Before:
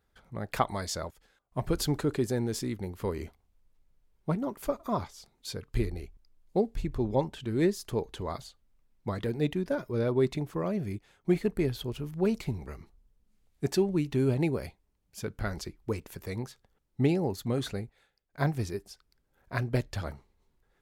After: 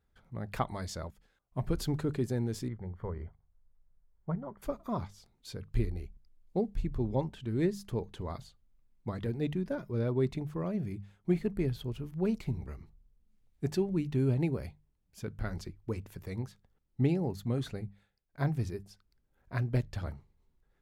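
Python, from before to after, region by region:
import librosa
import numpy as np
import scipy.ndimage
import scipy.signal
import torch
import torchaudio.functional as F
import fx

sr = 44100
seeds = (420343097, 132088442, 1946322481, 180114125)

y = fx.chain(x, sr, fx.savgol(points=41),
    fx.peak_eq(hz=280.0, db=-11.0, octaves=0.76), at=(2.68, 4.62))
y = fx.bass_treble(y, sr, bass_db=7, treble_db=-3)
y = fx.hum_notches(y, sr, base_hz=50, count=4)
y = y * 10.0 ** (-6.0 / 20.0)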